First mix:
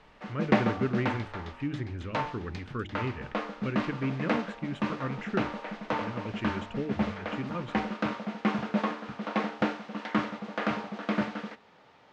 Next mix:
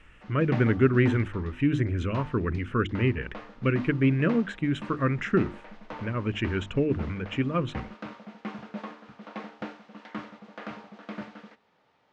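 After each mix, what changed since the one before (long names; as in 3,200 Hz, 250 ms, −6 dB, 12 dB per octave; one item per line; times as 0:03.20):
speech +9.0 dB
background −9.5 dB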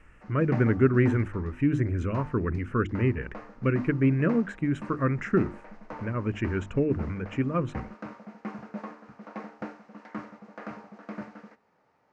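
master: add parametric band 3,400 Hz −14 dB 0.74 octaves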